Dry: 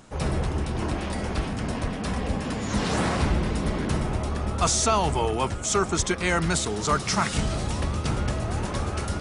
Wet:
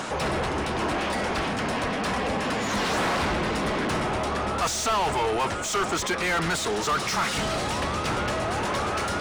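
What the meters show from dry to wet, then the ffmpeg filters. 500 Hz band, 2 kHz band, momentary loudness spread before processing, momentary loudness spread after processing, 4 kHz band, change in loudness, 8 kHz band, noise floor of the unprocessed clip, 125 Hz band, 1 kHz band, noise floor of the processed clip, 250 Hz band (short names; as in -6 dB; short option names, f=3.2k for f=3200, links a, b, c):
+1.5 dB, +4.5 dB, 6 LU, 3 LU, +2.5 dB, 0.0 dB, -3.0 dB, -32 dBFS, -6.5 dB, +3.0 dB, -29 dBFS, -2.0 dB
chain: -filter_complex "[0:a]acompressor=mode=upward:threshold=-27dB:ratio=2.5,asplit=2[a][b];[b]highpass=f=720:p=1,volume=26dB,asoftclip=type=tanh:threshold=-10dB[c];[a][c]amix=inputs=2:normalize=0,lowpass=f=3.3k:p=1,volume=-6dB,volume=-7dB"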